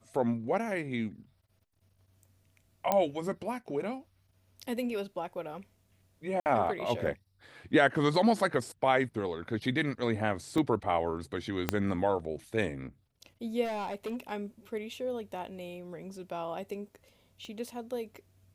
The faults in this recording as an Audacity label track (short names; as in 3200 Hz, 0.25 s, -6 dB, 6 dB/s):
2.920000	2.920000	pop -13 dBFS
6.400000	6.460000	gap 59 ms
10.580000	10.580000	gap 2.5 ms
11.690000	11.690000	pop -11 dBFS
13.640000	14.320000	clipped -31.5 dBFS
17.450000	17.450000	pop -33 dBFS